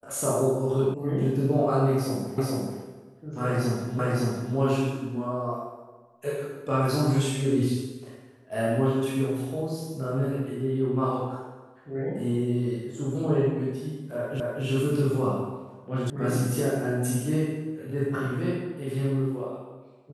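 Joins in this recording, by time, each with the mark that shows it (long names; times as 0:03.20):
0:00.94: cut off before it has died away
0:02.38: the same again, the last 0.43 s
0:03.99: the same again, the last 0.56 s
0:14.40: the same again, the last 0.25 s
0:16.10: cut off before it has died away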